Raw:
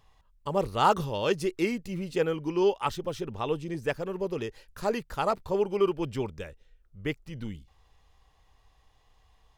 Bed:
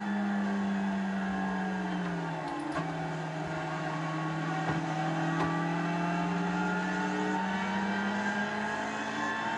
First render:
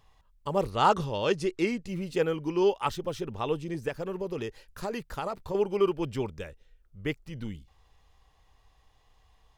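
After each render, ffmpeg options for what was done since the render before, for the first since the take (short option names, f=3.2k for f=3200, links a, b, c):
-filter_complex "[0:a]asettb=1/sr,asplit=3[a][b][c];[a]atrim=end=0.704[d];[b]atrim=start=0.7:end=1.88,asetpts=PTS-STARTPTS,afade=t=in:d=0.004:c=qsin,afade=t=out:st=1.176:d=0.004:c=qsin,lowpass=8.6k[e];[c]atrim=start=1.876[f];[d][e]acrossfade=d=0.004:c1=hsin:c2=qsin[g];[g][f]acrossfade=d=0.004:c1=qsin:c2=hsin,asettb=1/sr,asplit=3[h][i][j];[h]atrim=end=3.884[k];[i]atrim=start=3.88:end=5.55,asetpts=PTS-STARTPTS,afade=t=in:d=0.004:c=qsin,afade=t=out:st=1.666:d=0.004:c=qsin,acompressor=threshold=-28dB:ratio=6:attack=3.2:release=140:knee=1:detection=peak[l];[j]atrim=start=5.546[m];[k][l]acrossfade=d=0.004:c1=hsin:c2=qsin[n];[n][m]acrossfade=d=0.004:c1=qsin:c2=hsin"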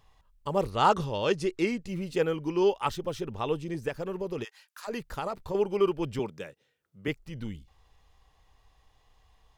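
-filter_complex "[0:a]asplit=3[a][b][c];[a]afade=t=out:st=4.43:d=0.02[d];[b]highpass=f=940:w=0.5412,highpass=f=940:w=1.3066,afade=t=in:st=4.43:d=0.02,afade=t=out:st=4.87:d=0.02[e];[c]afade=t=in:st=4.87:d=0.02[f];[d][e][f]amix=inputs=3:normalize=0,asettb=1/sr,asplit=3[g][h][i];[g]atrim=end=6.194[j];[h]atrim=start=6.19:end=7.08,asetpts=PTS-STARTPTS,afade=t=in:d=0.004:c=qsin,afade=t=out:st=0.886:d=0.004:c=qsin,highpass=f=130:w=0.5412,highpass=f=130:w=1.3066[k];[i]atrim=start=7.076[l];[j][k]acrossfade=d=0.004:c1=hsin:c2=qsin[m];[m][l]acrossfade=d=0.004:c1=qsin:c2=hsin"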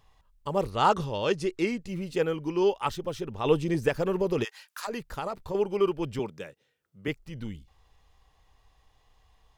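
-filter_complex "[0:a]asplit=3[a][b][c];[a]afade=t=out:st=3.44:d=0.02[d];[b]acontrast=80,afade=t=in:st=3.44:d=0.02,afade=t=out:st=4.86:d=0.02[e];[c]afade=t=in:st=4.86:d=0.02[f];[d][e][f]amix=inputs=3:normalize=0"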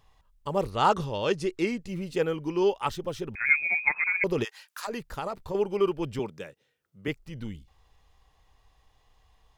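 -filter_complex "[0:a]asettb=1/sr,asplit=3[a][b][c];[a]atrim=end=3.354[d];[b]atrim=start=3.35:end=4.24,asetpts=PTS-STARTPTS,afade=t=in:d=0.004:c=qsin,afade=t=out:st=0.886:d=0.004:c=qsin,lowpass=f=2.2k:t=q:w=0.5098,lowpass=f=2.2k:t=q:w=0.6013,lowpass=f=2.2k:t=q:w=0.9,lowpass=f=2.2k:t=q:w=2.563,afreqshift=-2600[e];[c]atrim=start=4.236[f];[d][e]acrossfade=d=0.004:c1=hsin:c2=qsin[g];[g][f]acrossfade=d=0.004:c1=qsin:c2=hsin"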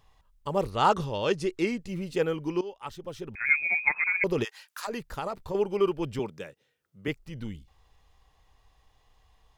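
-filter_complex "[0:a]asplit=2[a][b];[a]atrim=end=2.61,asetpts=PTS-STARTPTS,afade=t=out:st=2.606:d=0.004:c=hsin:silence=0.11885[c];[b]atrim=start=2.61,asetpts=PTS-STARTPTS,afade=t=in:d=1.06:silence=0.11885[d];[c][d]concat=n=2:v=0:a=1"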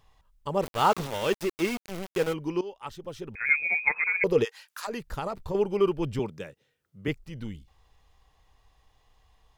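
-filter_complex "[0:a]asplit=3[a][b][c];[a]afade=t=out:st=0.62:d=0.02[d];[b]aeval=exprs='val(0)*gte(abs(val(0)),0.0282)':c=same,afade=t=in:st=0.62:d=0.02,afade=t=out:st=2.32:d=0.02[e];[c]afade=t=in:st=2.32:d=0.02[f];[d][e][f]amix=inputs=3:normalize=0,asettb=1/sr,asplit=3[g][h][i];[g]atrim=end=3.344[j];[h]atrim=start=3.34:end=4.52,asetpts=PTS-STARTPTS,afade=t=in:d=0.004:c=qsin,afade=t=out:st=1.176:d=0.004:c=qsin,equalizer=f=470:t=o:w=0.24:g=11.5[k];[i]atrim=start=4.516[l];[j][k]acrossfade=d=0.004:c1=hsin:c2=qsin[m];[m][l]acrossfade=d=0.004:c1=qsin:c2=hsin,asettb=1/sr,asplit=3[n][o][p];[n]atrim=end=5.074[q];[o]atrim=start=5.07:end=7.24,asetpts=PTS-STARTPTS,afade=t=in:d=0.004:c=qsin,afade=t=out:st=2.166:d=0.004:c=qsin,lowshelf=f=200:g=6[r];[p]atrim=start=7.236[s];[q][r]acrossfade=d=0.004:c1=hsin:c2=qsin[t];[t][s]acrossfade=d=0.004:c1=qsin:c2=hsin"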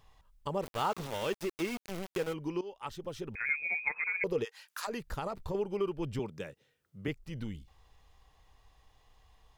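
-af "acompressor=threshold=-36dB:ratio=2"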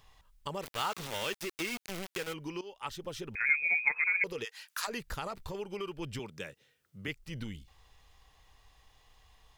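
-filter_complex "[0:a]acrossover=split=1400[a][b];[a]alimiter=level_in=7dB:limit=-24dB:level=0:latency=1:release=302,volume=-7dB[c];[b]acontrast=32[d];[c][d]amix=inputs=2:normalize=0"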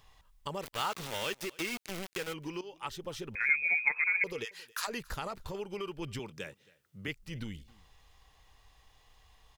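-af "aecho=1:1:273:0.0631"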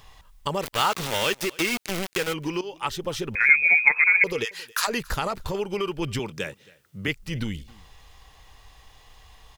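-af "volume=11dB"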